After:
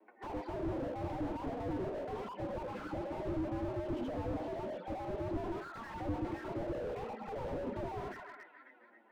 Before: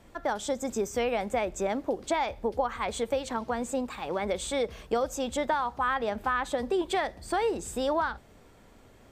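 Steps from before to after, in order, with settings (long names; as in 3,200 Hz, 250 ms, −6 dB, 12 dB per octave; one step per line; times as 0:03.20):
reversed piece by piece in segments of 80 ms
noise reduction from a noise print of the clip's start 21 dB
downward compressor, threshold −29 dBFS, peak gain reduction 7 dB
hard clipping −38.5 dBFS, distortion −5 dB
echo with a time of its own for lows and highs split 1,000 Hz, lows 104 ms, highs 270 ms, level −14.5 dB
formants moved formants +4 semitones
single-sideband voice off tune +98 Hz 170–2,600 Hz
convolution reverb RT60 0.20 s, pre-delay 3 ms, DRR 6.5 dB
flanger swept by the level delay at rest 9.7 ms, full sweep at −30.5 dBFS
slew-rate limiting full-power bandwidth 3.7 Hz
level +5 dB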